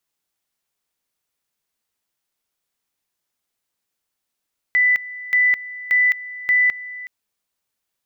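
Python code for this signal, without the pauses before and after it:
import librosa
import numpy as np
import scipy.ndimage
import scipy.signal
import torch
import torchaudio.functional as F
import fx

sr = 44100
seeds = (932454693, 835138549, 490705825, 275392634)

y = fx.two_level_tone(sr, hz=1990.0, level_db=-12.5, drop_db=17.5, high_s=0.21, low_s=0.37, rounds=4)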